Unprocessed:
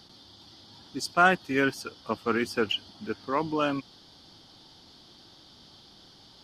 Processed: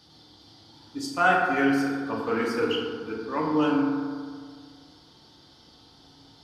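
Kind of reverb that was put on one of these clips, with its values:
feedback delay network reverb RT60 1.9 s, low-frequency decay 1×, high-frequency decay 0.35×, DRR −4.5 dB
level −5.5 dB

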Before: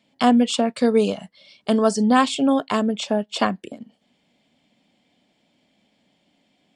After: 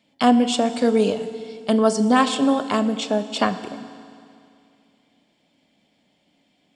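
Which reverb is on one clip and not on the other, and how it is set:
feedback delay network reverb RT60 2.4 s, low-frequency decay 1.1×, high-frequency decay 0.95×, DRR 10.5 dB

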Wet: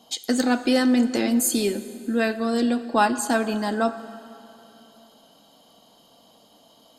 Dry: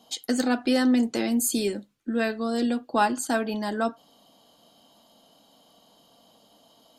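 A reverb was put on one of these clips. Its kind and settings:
dense smooth reverb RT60 3 s, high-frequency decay 0.7×, DRR 12 dB
level +3 dB

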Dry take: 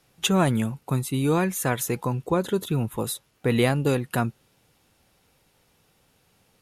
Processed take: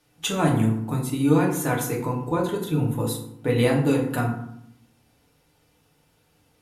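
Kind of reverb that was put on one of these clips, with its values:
feedback delay network reverb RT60 0.73 s, low-frequency decay 1.45×, high-frequency decay 0.55×, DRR −2 dB
level −4.5 dB

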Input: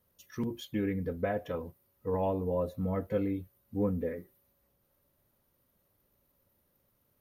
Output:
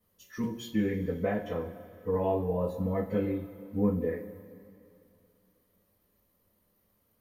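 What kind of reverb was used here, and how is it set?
coupled-rooms reverb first 0.25 s, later 2.7 s, from −21 dB, DRR −8.5 dB
level −7 dB

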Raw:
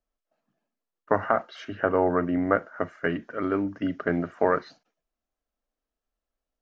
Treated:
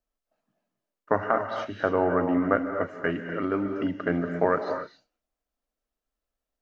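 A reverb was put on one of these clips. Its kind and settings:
reverb whose tail is shaped and stops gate 300 ms rising, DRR 6 dB
level −1 dB

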